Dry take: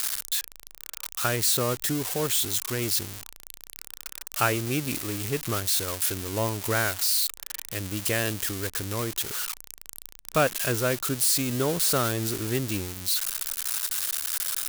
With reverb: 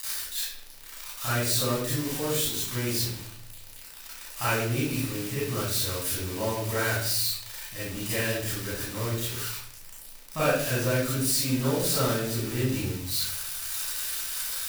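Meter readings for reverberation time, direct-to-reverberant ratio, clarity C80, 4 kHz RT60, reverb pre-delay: 0.60 s, −10.0 dB, 3.5 dB, 0.50 s, 32 ms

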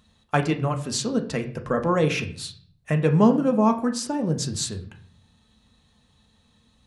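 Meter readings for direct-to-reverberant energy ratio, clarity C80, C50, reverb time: 5.0 dB, 16.5 dB, 12.5 dB, 0.50 s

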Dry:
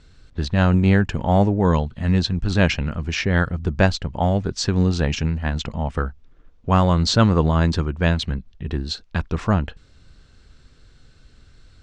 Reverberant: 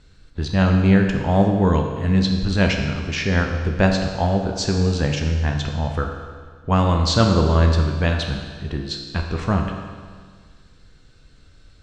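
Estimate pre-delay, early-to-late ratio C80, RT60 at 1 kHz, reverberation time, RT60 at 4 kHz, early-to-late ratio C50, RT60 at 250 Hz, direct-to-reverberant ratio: 10 ms, 6.0 dB, 1.7 s, 1.7 s, 1.6 s, 5.0 dB, 1.7 s, 2.5 dB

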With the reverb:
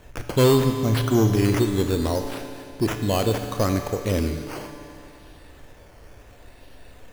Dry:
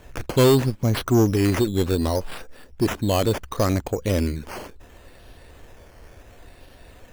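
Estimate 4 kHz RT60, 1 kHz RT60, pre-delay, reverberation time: 2.5 s, 2.6 s, 26 ms, 2.6 s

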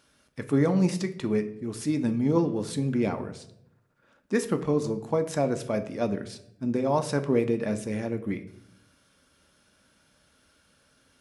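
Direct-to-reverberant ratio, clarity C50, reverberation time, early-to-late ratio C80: 7.0 dB, 13.5 dB, 0.75 s, 16.0 dB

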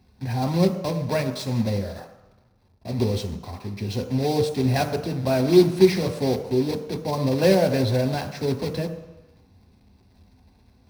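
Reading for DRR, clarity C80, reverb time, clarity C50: 6.0 dB, 11.5 dB, 1.0 s, 10.0 dB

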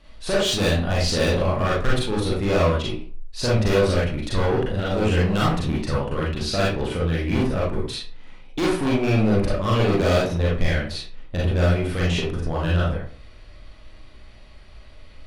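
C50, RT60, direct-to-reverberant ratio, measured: 1.5 dB, 0.45 s, −6.0 dB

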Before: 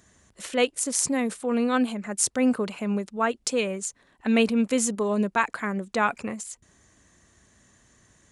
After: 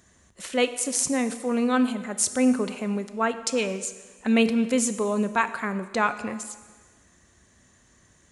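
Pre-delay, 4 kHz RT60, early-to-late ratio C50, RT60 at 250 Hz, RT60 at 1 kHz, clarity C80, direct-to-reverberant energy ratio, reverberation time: 4 ms, 1.4 s, 12.5 dB, 1.4 s, 1.5 s, 14.0 dB, 10.5 dB, 1.4 s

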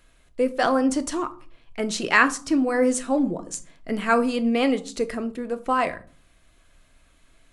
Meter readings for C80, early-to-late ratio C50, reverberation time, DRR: 22.5 dB, 17.5 dB, 0.40 s, 9.0 dB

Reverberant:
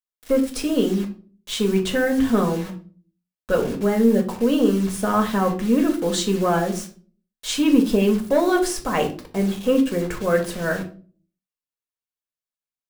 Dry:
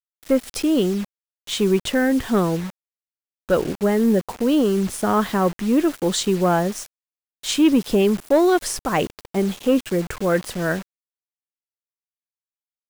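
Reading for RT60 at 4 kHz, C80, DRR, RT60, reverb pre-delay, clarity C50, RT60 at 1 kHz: 0.30 s, 16.5 dB, 1.5 dB, 0.40 s, 4 ms, 11.5 dB, 0.35 s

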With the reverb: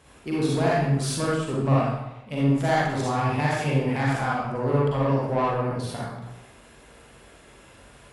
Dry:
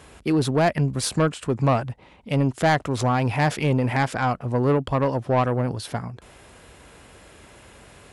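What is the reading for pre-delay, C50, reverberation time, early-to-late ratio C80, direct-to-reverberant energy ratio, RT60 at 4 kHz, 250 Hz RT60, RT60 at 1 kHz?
39 ms, −3.0 dB, 0.90 s, 1.5 dB, −6.5 dB, 0.70 s, 0.85 s, 0.85 s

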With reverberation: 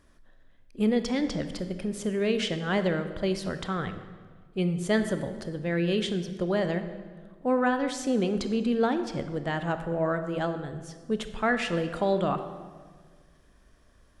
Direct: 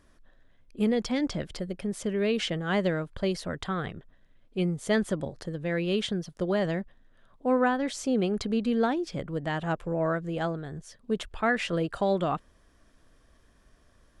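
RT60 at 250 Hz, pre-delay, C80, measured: 1.9 s, 22 ms, 11.0 dB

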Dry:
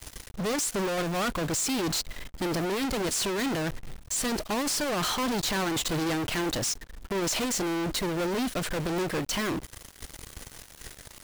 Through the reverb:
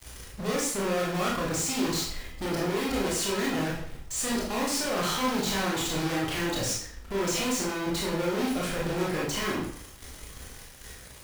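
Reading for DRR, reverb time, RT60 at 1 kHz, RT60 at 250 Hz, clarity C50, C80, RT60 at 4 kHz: −5.0 dB, 0.60 s, 0.60 s, 0.60 s, 2.0 dB, 7.0 dB, 0.50 s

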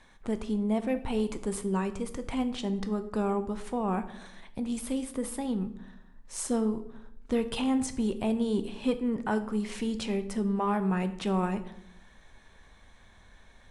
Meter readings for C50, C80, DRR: 13.5 dB, 16.0 dB, 9.5 dB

